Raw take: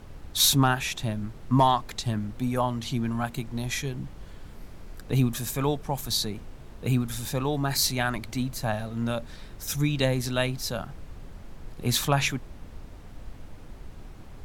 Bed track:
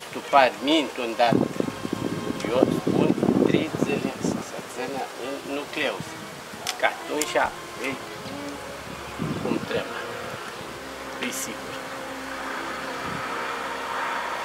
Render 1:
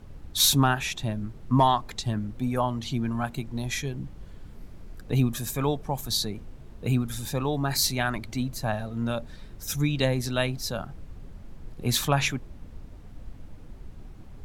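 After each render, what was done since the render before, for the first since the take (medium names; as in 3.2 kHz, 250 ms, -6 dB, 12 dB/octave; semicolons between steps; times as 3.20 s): noise reduction 6 dB, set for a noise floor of -45 dBFS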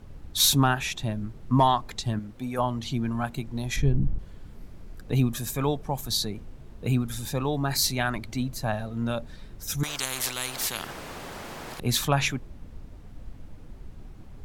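2.19–2.59 s: bass shelf 220 Hz -10 dB; 3.76–4.19 s: tilt EQ -3.5 dB/octave; 9.83–11.80 s: spectrum-flattening compressor 10:1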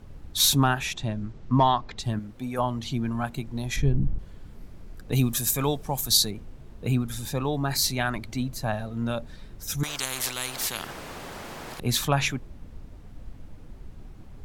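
0.93–1.98 s: low-pass 9 kHz -> 5.3 kHz 24 dB/octave; 5.12–6.31 s: treble shelf 3.9 kHz +11 dB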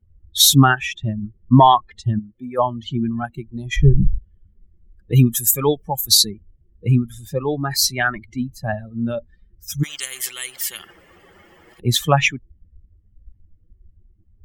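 expander on every frequency bin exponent 2; loudness maximiser +12.5 dB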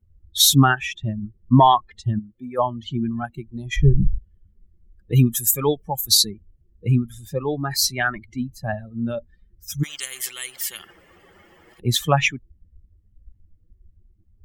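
trim -2.5 dB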